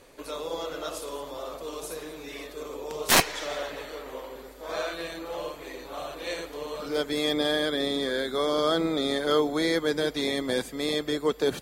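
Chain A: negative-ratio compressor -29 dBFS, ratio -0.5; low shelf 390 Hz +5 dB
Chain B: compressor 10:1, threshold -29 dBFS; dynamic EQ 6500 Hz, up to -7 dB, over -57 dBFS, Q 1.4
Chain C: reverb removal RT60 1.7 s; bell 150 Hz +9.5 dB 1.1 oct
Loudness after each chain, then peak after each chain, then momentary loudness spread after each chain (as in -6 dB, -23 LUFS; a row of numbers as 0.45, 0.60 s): -30.5, -35.5, -29.5 LUFS; -14.0, -14.0, -7.5 dBFS; 7, 6, 15 LU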